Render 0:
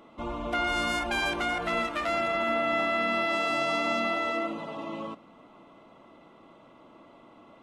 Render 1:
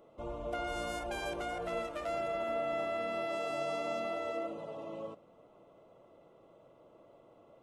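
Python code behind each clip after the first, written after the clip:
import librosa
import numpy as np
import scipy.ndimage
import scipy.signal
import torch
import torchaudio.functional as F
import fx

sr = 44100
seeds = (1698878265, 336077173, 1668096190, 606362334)

y = fx.graphic_eq(x, sr, hz=(125, 250, 500, 1000, 2000, 4000), db=(4, -10, 9, -6, -7, -6))
y = y * librosa.db_to_amplitude(-6.0)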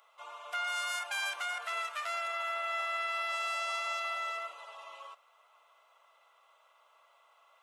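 y = scipy.signal.sosfilt(scipy.signal.butter(4, 1100.0, 'highpass', fs=sr, output='sos'), x)
y = y * librosa.db_to_amplitude(8.5)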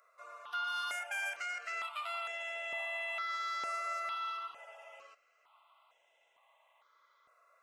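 y = fx.high_shelf(x, sr, hz=8400.0, db=-5.5)
y = fx.phaser_held(y, sr, hz=2.2, low_hz=860.0, high_hz=4400.0)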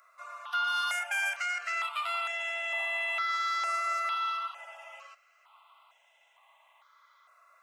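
y = scipy.signal.sosfilt(scipy.signal.butter(4, 710.0, 'highpass', fs=sr, output='sos'), x)
y = y * librosa.db_to_amplitude(7.0)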